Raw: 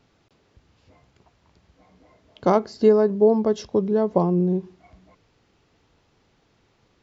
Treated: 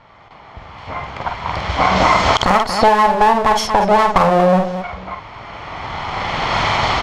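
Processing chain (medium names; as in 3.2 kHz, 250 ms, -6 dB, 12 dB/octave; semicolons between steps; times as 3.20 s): comb filter that takes the minimum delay 0.94 ms; recorder AGC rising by 14 dB/s; level-controlled noise filter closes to 2.1 kHz, open at -19.5 dBFS; resonant low shelf 440 Hz -9.5 dB, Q 1.5; on a send: multi-tap echo 48/232 ms -6/-15.5 dB; on the sum: compression 6:1, threshold -29 dBFS, peak gain reduction 12.5 dB; loudness maximiser +21.5 dB; trim -1 dB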